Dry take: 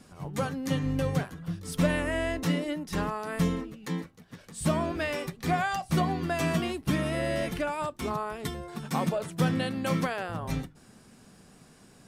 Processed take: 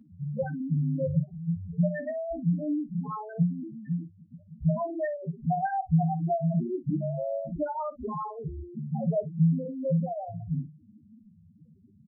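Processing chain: steep low-pass 5 kHz 72 dB/octave; in parallel at -3 dB: saturation -23 dBFS, distortion -14 dB; on the sum: companded quantiser 8-bit; mains buzz 100 Hz, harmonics 12, -54 dBFS -2 dB/octave; loudest bins only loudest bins 2; on a send: early reflections 13 ms -7 dB, 54 ms -16.5 dB

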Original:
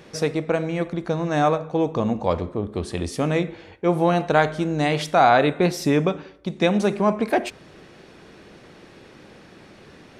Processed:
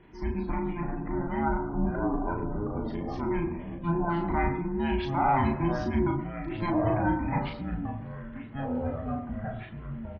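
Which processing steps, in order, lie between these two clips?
every band turned upside down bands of 500 Hz; low-pass 2.2 kHz 12 dB/octave; de-hum 46.62 Hz, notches 6; spectral gate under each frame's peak -30 dB strong; peaking EQ 1.1 kHz -5.5 dB 1.6 oct; transient shaper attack -3 dB, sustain +5 dB; ever faster or slower copies 211 ms, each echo -4 st, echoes 2, each echo -6 dB; doubling 36 ms -4 dB; on a send: reverberation RT60 0.50 s, pre-delay 77 ms, DRR 13 dB; on the sum: trim -7 dB

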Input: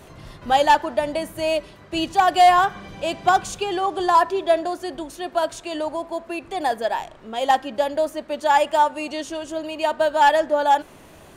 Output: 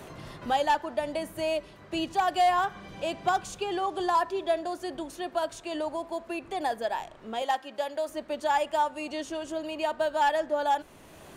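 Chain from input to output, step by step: 7.42–8.09 s: high-pass 610 Hz 6 dB/octave; three bands compressed up and down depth 40%; trim -8 dB

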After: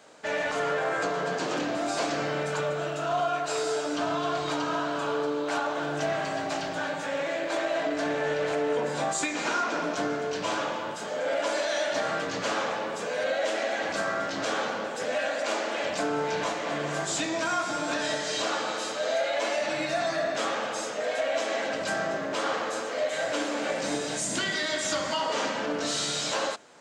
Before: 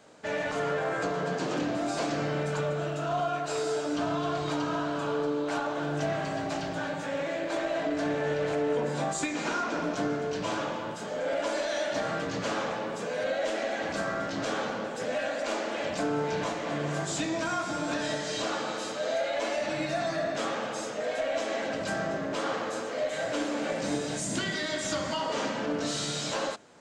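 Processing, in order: bass shelf 280 Hz -11 dB; trim +4 dB

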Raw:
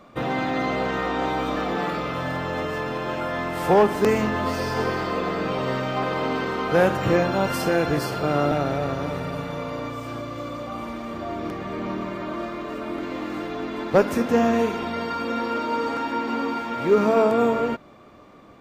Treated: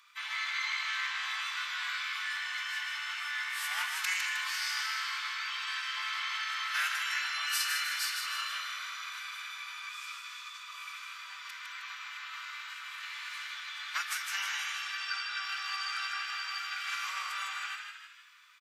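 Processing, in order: formant-preserving pitch shift -3 st; Bessel high-pass 2.3 kHz, order 8; frequency-shifting echo 156 ms, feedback 49%, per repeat +63 Hz, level -5.5 dB; trim +2.5 dB

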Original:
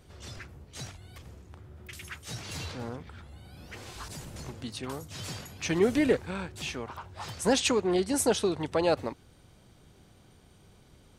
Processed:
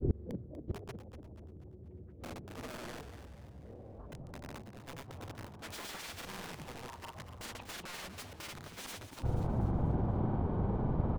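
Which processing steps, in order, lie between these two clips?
bass shelf 410 Hz +9.5 dB; in parallel at -3 dB: compression 12:1, threshold -30 dBFS, peak gain reduction 17 dB; on the sum: low-pass sweep 390 Hz -> 930 Hz, 2.32–5.46 s; integer overflow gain 22.5 dB; inverted gate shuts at -29 dBFS, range -29 dB; granulator; on a send: frequency-shifting echo 242 ms, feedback 44%, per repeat +110 Hz, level -11 dB; on the sum: trim +13 dB

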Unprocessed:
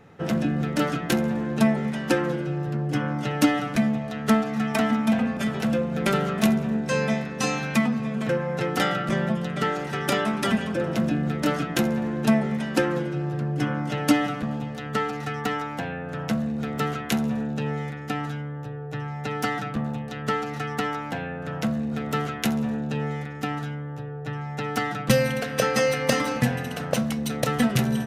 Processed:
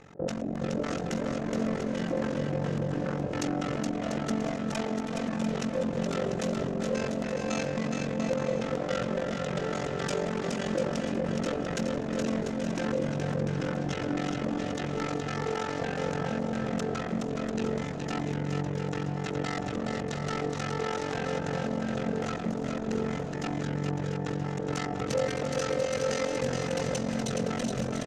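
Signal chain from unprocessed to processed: hum notches 50/100/150/200/250/300/350 Hz; in parallel at +2 dB: compressor with a negative ratio -30 dBFS; on the sum: AM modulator 45 Hz, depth 95%; hard clipper -24 dBFS, distortion -8 dB; LFO low-pass square 3.6 Hz 540–6800 Hz; on a send: bouncing-ball echo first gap 420 ms, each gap 0.65×, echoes 5; on the sum: trim -5.5 dB

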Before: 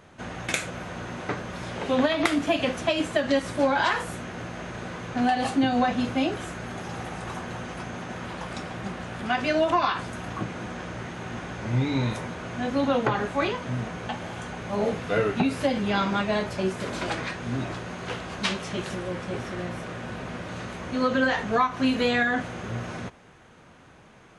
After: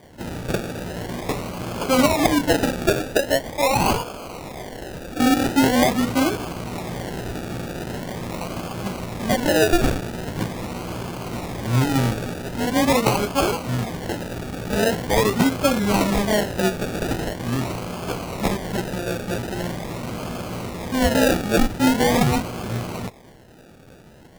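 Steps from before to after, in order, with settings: 2.95–5.20 s: high-pass 500 Hz 12 dB/octave; decimation with a swept rate 33×, swing 60% 0.43 Hz; trim +5.5 dB

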